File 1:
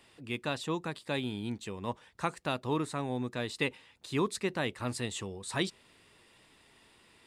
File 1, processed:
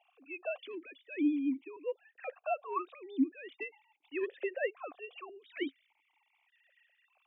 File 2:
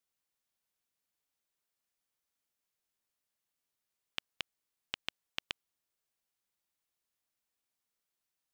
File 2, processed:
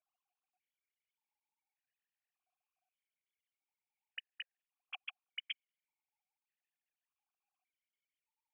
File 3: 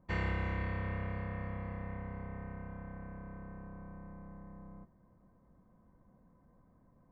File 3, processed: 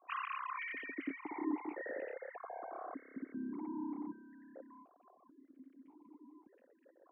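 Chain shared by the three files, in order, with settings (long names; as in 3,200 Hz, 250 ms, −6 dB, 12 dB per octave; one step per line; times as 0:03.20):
three sine waves on the formant tracks
soft clipping −16.5 dBFS
formant filter that steps through the vowels 1.7 Hz
level +8 dB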